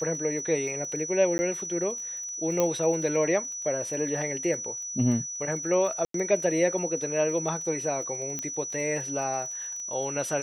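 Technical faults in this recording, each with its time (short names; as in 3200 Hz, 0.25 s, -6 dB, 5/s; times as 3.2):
crackle 26/s -36 dBFS
tone 5900 Hz -33 dBFS
1.38–1.39 gap 10 ms
2.6 pop -11 dBFS
6.05–6.14 gap 93 ms
8.39 pop -17 dBFS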